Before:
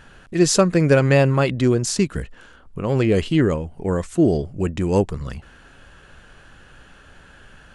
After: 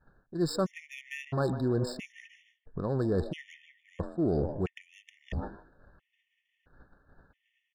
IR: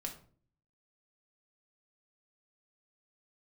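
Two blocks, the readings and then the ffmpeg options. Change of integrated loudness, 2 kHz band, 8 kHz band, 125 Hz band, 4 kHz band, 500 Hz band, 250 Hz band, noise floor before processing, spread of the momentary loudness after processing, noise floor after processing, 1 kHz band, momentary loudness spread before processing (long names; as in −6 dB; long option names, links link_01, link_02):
−13.5 dB, −16.0 dB, below −20 dB, −14.0 dB, −15.5 dB, −13.5 dB, −13.5 dB, −49 dBFS, 16 LU, −81 dBFS, −13.0 dB, 16 LU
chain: -filter_complex "[0:a]asplit=5[link_01][link_02][link_03][link_04][link_05];[link_02]adelay=151,afreqshift=130,volume=-16dB[link_06];[link_03]adelay=302,afreqshift=260,volume=-22.6dB[link_07];[link_04]adelay=453,afreqshift=390,volume=-29.1dB[link_08];[link_05]adelay=604,afreqshift=520,volume=-35.7dB[link_09];[link_01][link_06][link_07][link_08][link_09]amix=inputs=5:normalize=0,adynamicsmooth=sensitivity=2:basefreq=1700,agate=range=-33dB:threshold=-36dB:ratio=3:detection=peak,areverse,acompressor=threshold=-30dB:ratio=5,areverse,afftfilt=real='re*gt(sin(2*PI*0.75*pts/sr)*(1-2*mod(floor(b*sr/1024/1800),2)),0)':imag='im*gt(sin(2*PI*0.75*pts/sr)*(1-2*mod(floor(b*sr/1024/1800),2)),0)':win_size=1024:overlap=0.75,volume=3dB"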